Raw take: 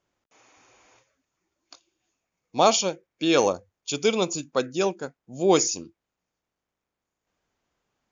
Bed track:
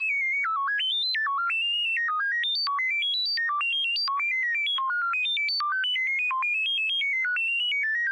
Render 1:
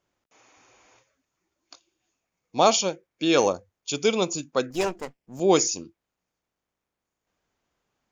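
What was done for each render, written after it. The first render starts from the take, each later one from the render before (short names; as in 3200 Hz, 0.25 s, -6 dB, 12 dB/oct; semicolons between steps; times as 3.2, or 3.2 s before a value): 4.7–5.4 minimum comb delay 0.38 ms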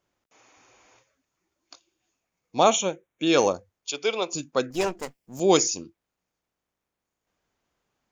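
2.63–3.27 Butterworth band-stop 4800 Hz, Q 2.4; 3.91–4.33 three-band isolator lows -18 dB, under 390 Hz, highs -22 dB, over 5000 Hz; 5–5.57 high shelf 4800 Hz +10.5 dB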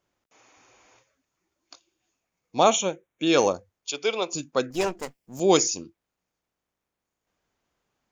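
nothing audible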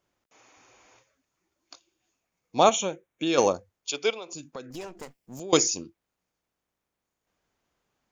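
2.69–3.38 compressor 2:1, threshold -25 dBFS; 4.1–5.53 compressor 5:1, threshold -36 dBFS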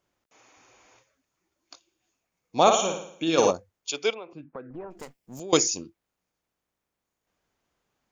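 2.61–3.51 flutter echo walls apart 9.5 m, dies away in 0.62 s; 4.13–4.9 LPF 2800 Hz -> 1400 Hz 24 dB/oct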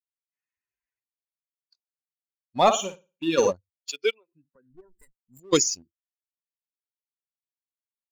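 per-bin expansion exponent 2; sample leveller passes 1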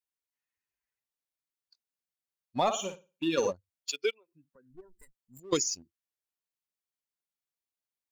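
compressor 2.5:1, threshold -28 dBFS, peak gain reduction 10 dB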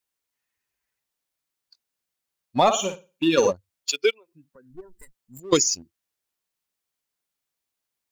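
gain +9 dB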